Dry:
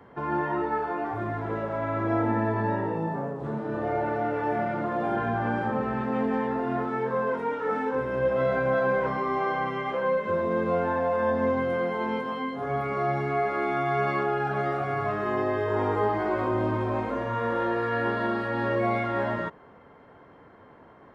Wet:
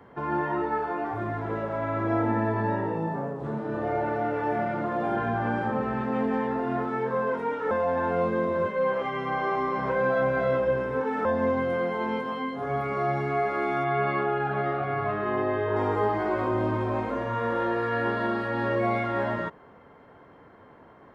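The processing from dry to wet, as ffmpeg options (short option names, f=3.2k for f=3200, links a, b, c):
-filter_complex "[0:a]asettb=1/sr,asplit=3[a][b][c];[a]atrim=end=13.844[d];[b]atrim=start=13.84:end=15.76,asetpts=PTS-STARTPTS,afade=t=in:d=0.004:c=qsin,afade=t=out:st=1.916:d=0.004:c=qsin,lowpass=f=4k:w=0.5412,lowpass=f=4k:w=1.3066[e];[c]atrim=start=15.756[f];[d][e]acrossfade=d=0.004:c1=hsin:c2=qsin[g];[g][f]acrossfade=d=0.004:c1=qsin:c2=hsin,asplit=3[h][i][j];[h]atrim=end=7.712[k];[i]atrim=start=7.708:end=11.252,asetpts=PTS-STARTPTS,areverse[l];[j]atrim=start=11.248[m];[k][l]acrossfade=d=0.004:c1=hsin:c2=hsin[n];[n][m]acrossfade=d=0.004:c1=hsin:c2=hsin"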